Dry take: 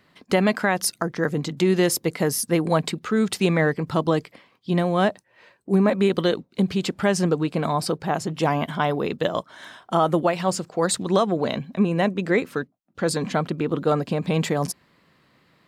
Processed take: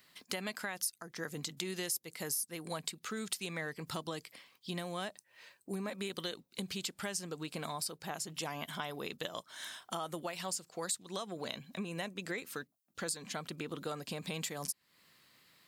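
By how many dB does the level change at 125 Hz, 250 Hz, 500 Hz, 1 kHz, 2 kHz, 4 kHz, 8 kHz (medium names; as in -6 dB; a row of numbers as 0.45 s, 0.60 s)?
-21.0 dB, -21.0 dB, -20.5 dB, -18.0 dB, -14.0 dB, -9.0 dB, -8.0 dB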